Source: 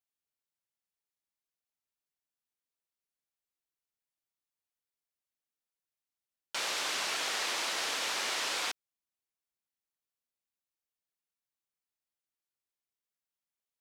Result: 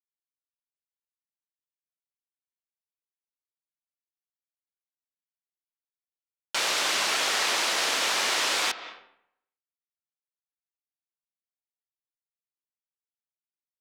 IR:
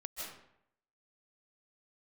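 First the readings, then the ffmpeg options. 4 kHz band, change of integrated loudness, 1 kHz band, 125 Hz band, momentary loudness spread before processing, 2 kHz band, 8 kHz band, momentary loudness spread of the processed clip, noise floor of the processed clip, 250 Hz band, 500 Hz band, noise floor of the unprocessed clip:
+7.5 dB, +8.0 dB, +8.0 dB, can't be measured, 5 LU, +8.0 dB, +7.5 dB, 7 LU, below −85 dBFS, +8.0 dB, +8.0 dB, below −85 dBFS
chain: -filter_complex "[0:a]aeval=exprs='sgn(val(0))*max(abs(val(0))-0.00119,0)':channel_layout=same,asplit=2[link_01][link_02];[link_02]lowpass=6100[link_03];[1:a]atrim=start_sample=2205,lowpass=3700,adelay=19[link_04];[link_03][link_04]afir=irnorm=-1:irlink=0,volume=-10dB[link_05];[link_01][link_05]amix=inputs=2:normalize=0,volume=8dB"

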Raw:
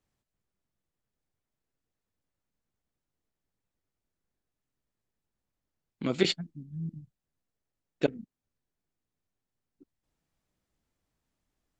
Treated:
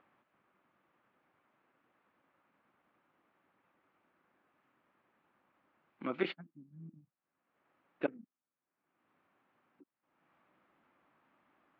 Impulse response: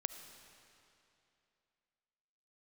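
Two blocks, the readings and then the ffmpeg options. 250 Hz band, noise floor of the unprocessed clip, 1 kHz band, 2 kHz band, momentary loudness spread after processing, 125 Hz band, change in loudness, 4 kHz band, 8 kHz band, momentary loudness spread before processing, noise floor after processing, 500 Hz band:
−8.5 dB, below −85 dBFS, −1.5 dB, −5.0 dB, 18 LU, −15.0 dB, −7.5 dB, −16.0 dB, below −25 dB, 16 LU, below −85 dBFS, −8.0 dB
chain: -af "highpass=340,equalizer=frequency=440:width_type=q:width=4:gain=-8,equalizer=frequency=670:width_type=q:width=4:gain=-3,equalizer=frequency=1200:width_type=q:width=4:gain=4,equalizer=frequency=1900:width_type=q:width=4:gain=-3,lowpass=frequency=2300:width=0.5412,lowpass=frequency=2300:width=1.3066,acompressor=mode=upward:threshold=-54dB:ratio=2.5,volume=-2dB"

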